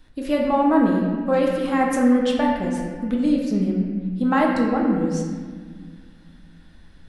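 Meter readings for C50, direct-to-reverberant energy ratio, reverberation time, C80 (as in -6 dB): 2.0 dB, -2.0 dB, 1.7 s, 3.0 dB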